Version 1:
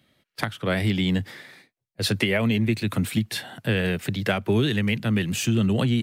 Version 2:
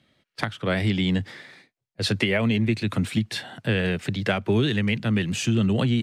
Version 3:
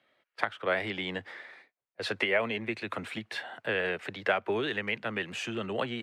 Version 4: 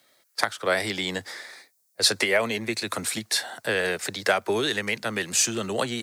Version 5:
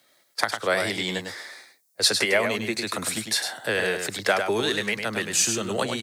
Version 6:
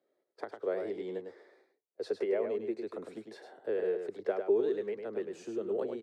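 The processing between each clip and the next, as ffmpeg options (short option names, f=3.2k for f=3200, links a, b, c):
-af "lowpass=7.7k"
-filter_complex "[0:a]acrossover=split=410 2600:gain=0.0794 1 0.2[a][b][c];[a][b][c]amix=inputs=3:normalize=0"
-af "aexciter=amount=11.6:drive=3.4:freq=4.3k,volume=5dB"
-af "aecho=1:1:103:0.473"
-af "bandpass=f=410:t=q:w=4.2:csg=0"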